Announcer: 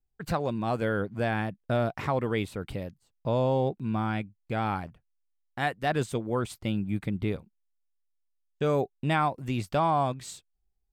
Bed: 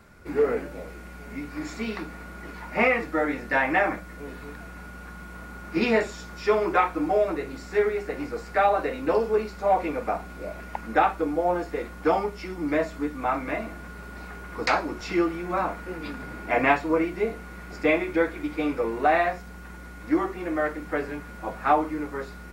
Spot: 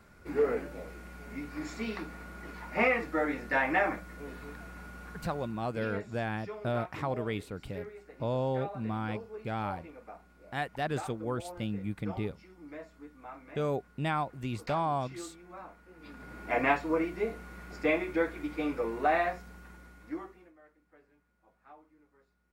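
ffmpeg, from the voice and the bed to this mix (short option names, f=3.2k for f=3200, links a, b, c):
-filter_complex "[0:a]adelay=4950,volume=-5.5dB[a];[1:a]volume=9.5dB,afade=t=out:st=5.14:d=0.59:silence=0.16788,afade=t=in:st=15.94:d=0.59:silence=0.188365,afade=t=out:st=19.29:d=1.24:silence=0.0398107[b];[a][b]amix=inputs=2:normalize=0"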